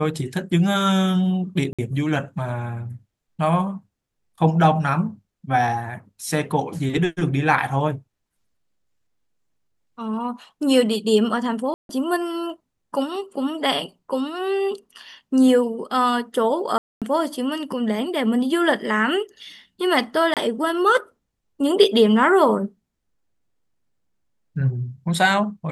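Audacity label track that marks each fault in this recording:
1.730000	1.790000	gap 56 ms
11.740000	11.890000	gap 0.152 s
16.780000	17.020000	gap 0.237 s
20.340000	20.370000	gap 27 ms

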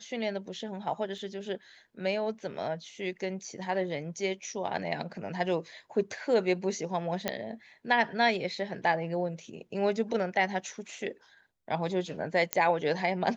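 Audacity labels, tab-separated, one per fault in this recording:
1.180000	1.180000	gap 2.3 ms
7.280000	7.280000	pop -13 dBFS
12.530000	12.530000	pop -8 dBFS

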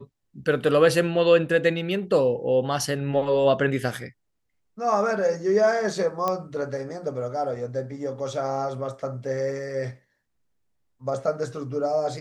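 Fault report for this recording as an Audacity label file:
6.280000	6.280000	pop -12 dBFS

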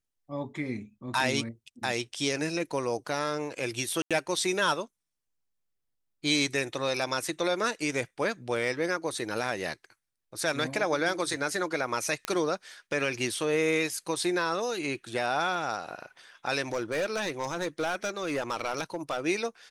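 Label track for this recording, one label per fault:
4.020000	4.110000	gap 86 ms
12.250000	12.250000	pop -14 dBFS
16.720000	19.210000	clipped -25 dBFS

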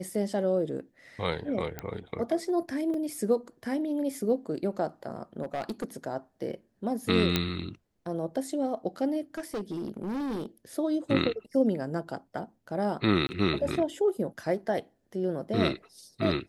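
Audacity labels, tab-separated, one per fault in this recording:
1.790000	1.790000	pop -19 dBFS
2.940000	2.940000	gap 2.9 ms
5.420000	5.970000	clipped -27.5 dBFS
7.360000	7.360000	pop -9 dBFS
9.340000	10.460000	clipped -29.5 dBFS
13.270000	13.290000	gap 20 ms

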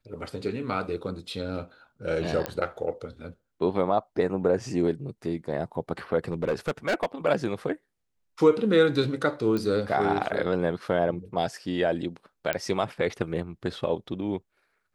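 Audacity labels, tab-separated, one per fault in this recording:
2.460000	2.460000	pop -13 dBFS
6.280000	7.060000	clipped -21 dBFS
9.570000	9.570000	pop -18 dBFS
12.530000	12.530000	pop -10 dBFS

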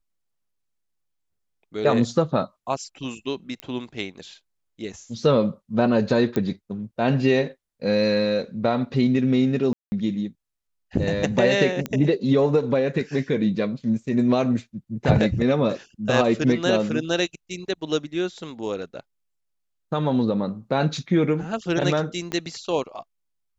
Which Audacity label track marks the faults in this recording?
3.600000	3.600000	pop -17 dBFS
6.360000	6.360000	pop -13 dBFS
9.730000	9.920000	gap 0.19 s
11.860000	11.860000	pop -13 dBFS
22.320000	22.320000	pop -15 dBFS

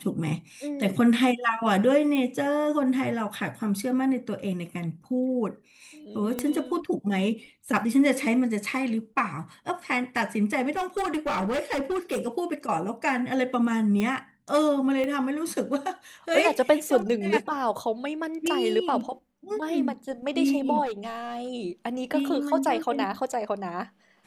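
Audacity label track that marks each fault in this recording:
2.150000	2.150000	pop -17 dBFS
6.390000	6.390000	pop -14 dBFS
10.760000	12.280000	clipped -23.5 dBFS
14.000000	14.000000	pop -15 dBFS
15.040000	15.040000	pop -19 dBFS
20.850000	21.490000	clipped -28.5 dBFS

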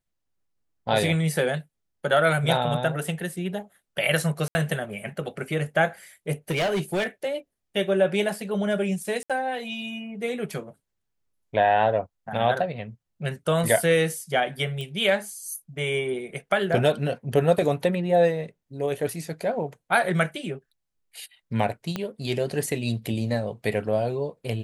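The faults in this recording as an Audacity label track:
4.480000	4.550000	gap 70 ms
6.500000	7.070000	clipped -21 dBFS
9.230000	9.300000	gap 66 ms
14.810000	14.810000	pop -21 dBFS
21.960000	21.960000	pop -14 dBFS

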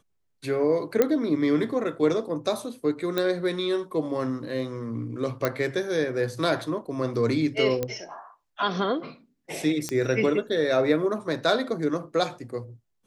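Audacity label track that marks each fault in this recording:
1.020000	1.020000	pop -8 dBFS
3.180000	3.180000	pop -12 dBFS
5.450000	5.450000	pop -10 dBFS
7.830000	7.830000	pop -13 dBFS
9.890000	9.890000	pop -14 dBFS

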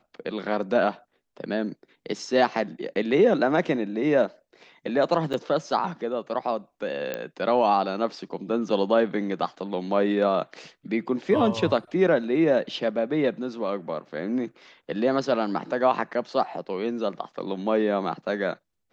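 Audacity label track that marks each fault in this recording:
5.330000	5.340000	gap 6.9 ms
7.140000	7.140000	pop -15 dBFS

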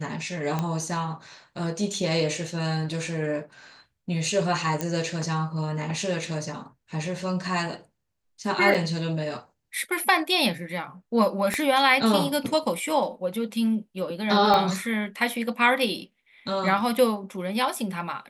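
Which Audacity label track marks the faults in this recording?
0.590000	0.590000	pop -14 dBFS
4.810000	4.810000	pop -12 dBFS
8.740000	8.750000	gap 6.4 ms
11.540000	11.540000	pop -11 dBFS
14.540000	14.540000	pop -10 dBFS

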